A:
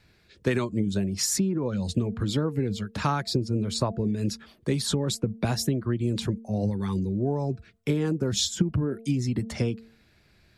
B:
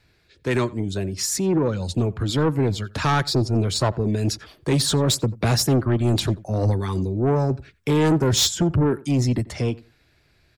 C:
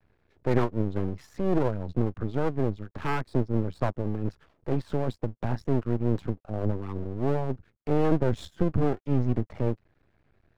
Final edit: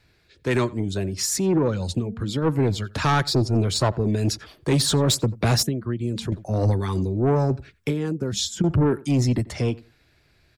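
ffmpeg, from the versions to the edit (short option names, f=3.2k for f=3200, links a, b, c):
-filter_complex "[0:a]asplit=3[a][b][c];[1:a]asplit=4[d][e][f][g];[d]atrim=end=2.01[h];[a]atrim=start=1.95:end=2.47[i];[e]atrim=start=2.41:end=5.632[j];[b]atrim=start=5.628:end=6.322[k];[f]atrim=start=6.318:end=7.892[l];[c]atrim=start=7.888:end=8.642[m];[g]atrim=start=8.638[n];[h][i]acrossfade=d=0.06:c1=tri:c2=tri[o];[o][j]acrossfade=d=0.06:c1=tri:c2=tri[p];[p][k]acrossfade=d=0.004:c1=hsin:c2=hsin[q];[q][l]acrossfade=d=0.004:c1=hsin:c2=hsin[r];[r][m]acrossfade=d=0.004:c1=hsin:c2=hsin[s];[s][n]acrossfade=d=0.004:c1=hsin:c2=hsin"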